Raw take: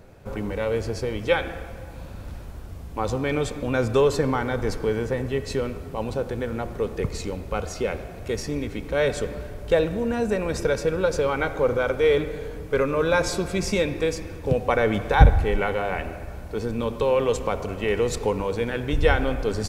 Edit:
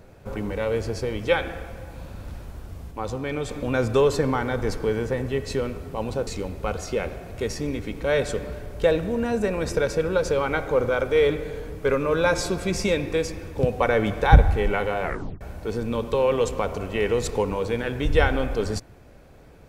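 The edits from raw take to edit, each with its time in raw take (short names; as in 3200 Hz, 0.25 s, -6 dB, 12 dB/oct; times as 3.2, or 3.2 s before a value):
2.91–3.49 gain -4 dB
6.27–7.15 cut
15.92 tape stop 0.37 s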